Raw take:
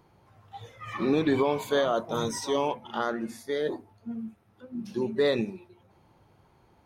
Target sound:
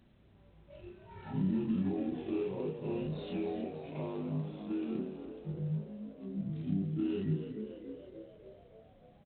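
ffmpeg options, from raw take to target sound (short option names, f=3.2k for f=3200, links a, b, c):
-filter_complex "[0:a]afftfilt=real='re':imag='-im':win_size=2048:overlap=0.75,tiltshelf=f=710:g=3.5,aecho=1:1:3.9:0.42,acompressor=threshold=-37dB:ratio=2.5,equalizer=f=125:t=o:w=1:g=4,equalizer=f=250:t=o:w=1:g=4,equalizer=f=1k:t=o:w=1:g=-4,equalizer=f=2k:t=o:w=1:g=-11,asplit=9[a][b][c][d][e][f][g][h][i];[b]adelay=215,afreqshift=77,volume=-10dB[j];[c]adelay=430,afreqshift=154,volume=-14.2dB[k];[d]adelay=645,afreqshift=231,volume=-18.3dB[l];[e]adelay=860,afreqshift=308,volume=-22.5dB[m];[f]adelay=1075,afreqshift=385,volume=-26.6dB[n];[g]adelay=1290,afreqshift=462,volume=-30.8dB[o];[h]adelay=1505,afreqshift=539,volume=-34.9dB[p];[i]adelay=1720,afreqshift=616,volume=-39.1dB[q];[a][j][k][l][m][n][o][p][q]amix=inputs=9:normalize=0,asetrate=32667,aresample=44100" -ar 8000 -c:a adpcm_g726 -b:a 24k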